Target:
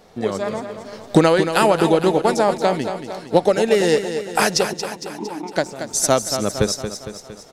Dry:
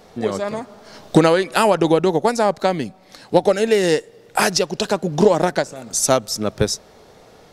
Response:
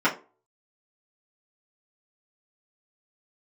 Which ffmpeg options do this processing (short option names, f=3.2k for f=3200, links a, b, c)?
-filter_complex "[0:a]asettb=1/sr,asplit=3[a][b][c];[a]atrim=end=4.734[d];[b]atrim=start=4.73:end=5.56,asetpts=PTS-STARTPTS,afade=t=in:d=0.004:c=qsin,afade=t=out:st=0.826:d=0.004:c=qsin,asplit=3[e][f][g];[e]bandpass=f=300:t=q:w=8,volume=0dB[h];[f]bandpass=f=870:t=q:w=8,volume=-6dB[i];[g]bandpass=f=2.24k:t=q:w=8,volume=-9dB[j];[h][i][j]amix=inputs=3:normalize=0[k];[c]atrim=start=5.556[l];[d][k]acrossfade=d=0.004:c1=hsin:c2=qsin[m];[m][l]acrossfade=d=0.004:c1=qsin:c2=hsin,aecho=1:1:229|458|687|916|1145|1374|1603:0.355|0.206|0.119|0.0692|0.0402|0.0233|0.0135,asplit=2[n][o];[o]aeval=exprs='sgn(val(0))*max(abs(val(0))-0.0126,0)':c=same,volume=-9dB[p];[n][p]amix=inputs=2:normalize=0,volume=-3dB"